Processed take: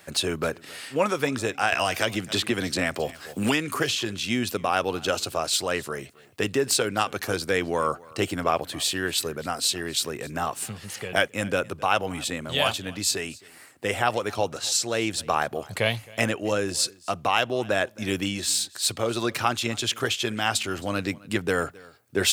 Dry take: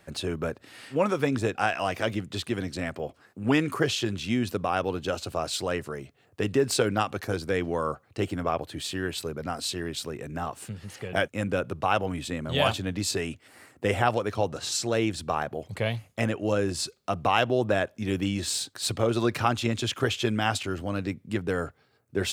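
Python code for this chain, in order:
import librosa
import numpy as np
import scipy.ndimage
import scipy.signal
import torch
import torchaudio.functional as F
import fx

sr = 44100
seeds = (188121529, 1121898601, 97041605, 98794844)

y = fx.tilt_eq(x, sr, slope=2.0)
y = fx.rider(y, sr, range_db=3, speed_s=0.5)
y = y + 10.0 ** (-23.0 / 20.0) * np.pad(y, (int(266 * sr / 1000.0), 0))[:len(y)]
y = fx.band_squash(y, sr, depth_pct=100, at=(1.72, 4.02))
y = y * 10.0 ** (2.5 / 20.0)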